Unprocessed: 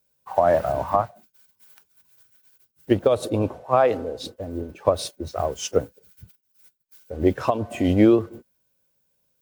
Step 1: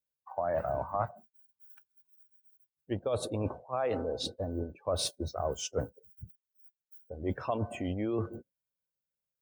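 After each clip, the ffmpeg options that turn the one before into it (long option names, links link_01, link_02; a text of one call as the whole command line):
ffmpeg -i in.wav -af "areverse,acompressor=threshold=-27dB:ratio=10,areverse,afftdn=noise_reduction=21:noise_floor=-51,equalizer=frequency=320:width=1:gain=-3.5" out.wav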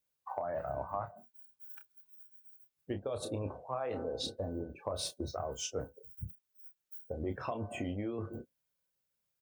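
ffmpeg -i in.wav -filter_complex "[0:a]acompressor=threshold=-40dB:ratio=10,asplit=2[link_01][link_02];[link_02]adelay=30,volume=-8dB[link_03];[link_01][link_03]amix=inputs=2:normalize=0,volume=5.5dB" out.wav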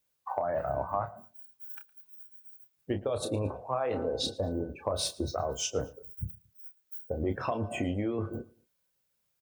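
ffmpeg -i in.wav -af "aecho=1:1:113|226:0.075|0.0262,volume=6dB" out.wav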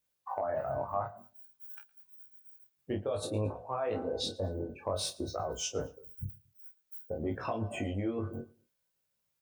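ffmpeg -i in.wav -af "flanger=delay=18:depth=3.6:speed=0.54" out.wav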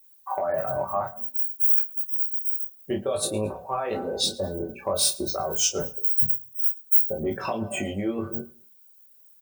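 ffmpeg -i in.wav -af "aemphasis=mode=production:type=50fm,bandreject=frequency=60:width_type=h:width=6,bandreject=frequency=120:width_type=h:width=6,bandreject=frequency=180:width_type=h:width=6,bandreject=frequency=240:width_type=h:width=6,aecho=1:1:5.2:0.53,volume=6dB" out.wav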